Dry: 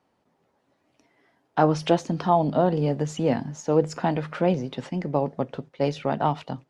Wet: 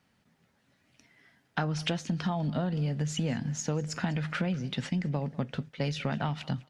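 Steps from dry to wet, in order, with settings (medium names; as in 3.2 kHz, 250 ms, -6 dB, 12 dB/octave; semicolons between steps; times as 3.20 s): high-order bell 570 Hz -11.5 dB 2.3 oct; compression 10:1, threshold -32 dBFS, peak gain reduction 11.5 dB; feedback delay 199 ms, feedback 23%, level -22 dB; trim +5.5 dB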